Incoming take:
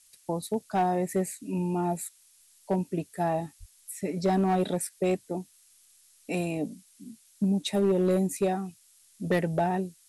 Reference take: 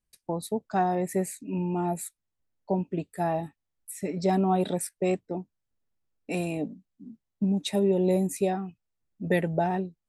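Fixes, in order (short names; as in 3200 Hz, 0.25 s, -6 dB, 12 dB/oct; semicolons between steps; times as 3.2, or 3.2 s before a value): clip repair -18.5 dBFS; de-plosive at 3.59; noise print and reduce 22 dB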